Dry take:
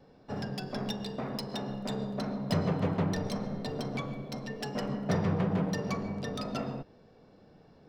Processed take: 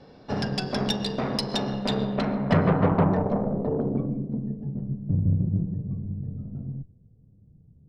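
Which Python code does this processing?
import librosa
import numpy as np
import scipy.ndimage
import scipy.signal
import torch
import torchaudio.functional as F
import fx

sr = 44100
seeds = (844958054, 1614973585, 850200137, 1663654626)

y = fx.filter_sweep_lowpass(x, sr, from_hz=4900.0, to_hz=110.0, start_s=1.76, end_s=4.97, q=1.5)
y = fx.cheby_harmonics(y, sr, harmonics=(6,), levels_db=(-22,), full_scale_db=-16.5)
y = y * 10.0 ** (8.0 / 20.0)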